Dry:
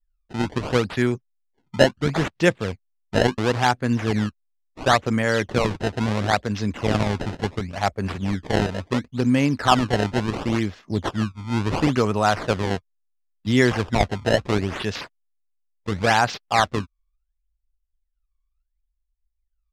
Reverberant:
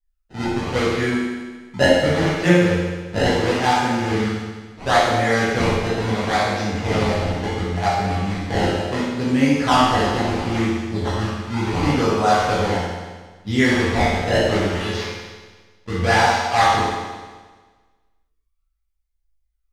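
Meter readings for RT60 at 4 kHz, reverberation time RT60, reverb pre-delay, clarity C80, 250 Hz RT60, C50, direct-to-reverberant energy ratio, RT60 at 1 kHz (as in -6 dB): 1.4 s, 1.4 s, 11 ms, 1.0 dB, 1.4 s, -2.0 dB, -9.0 dB, 1.4 s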